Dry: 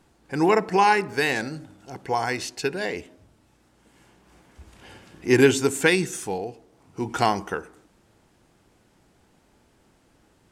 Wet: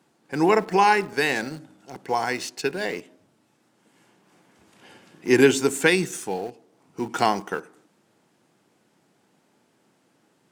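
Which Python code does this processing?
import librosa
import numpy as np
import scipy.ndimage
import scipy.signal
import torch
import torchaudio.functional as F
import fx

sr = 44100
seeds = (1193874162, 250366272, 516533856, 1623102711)

p1 = scipy.signal.sosfilt(scipy.signal.butter(4, 140.0, 'highpass', fs=sr, output='sos'), x)
p2 = np.where(np.abs(p1) >= 10.0 ** (-31.5 / 20.0), p1, 0.0)
p3 = p1 + (p2 * librosa.db_to_amplitude(-8.0))
y = p3 * librosa.db_to_amplitude(-2.5)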